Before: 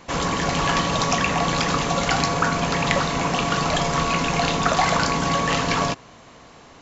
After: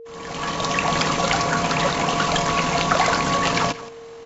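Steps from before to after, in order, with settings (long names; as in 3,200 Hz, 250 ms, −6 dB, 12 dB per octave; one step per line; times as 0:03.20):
fade in at the beginning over 1.46 s
low-shelf EQ 230 Hz −4.5 dB
single-tap delay 288 ms −16.5 dB
steady tone 460 Hz −39 dBFS
tempo change 1.6×
level +2 dB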